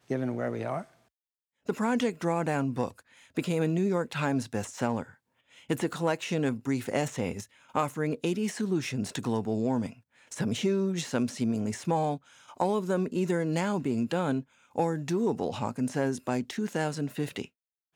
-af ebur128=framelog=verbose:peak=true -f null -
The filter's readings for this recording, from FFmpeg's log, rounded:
Integrated loudness:
  I:         -30.4 LUFS
  Threshold: -40.8 LUFS
Loudness range:
  LRA:         2.1 LU
  Threshold: -50.6 LUFS
  LRA low:   -31.7 LUFS
  LRA high:  -29.6 LUFS
True peak:
  Peak:      -13.5 dBFS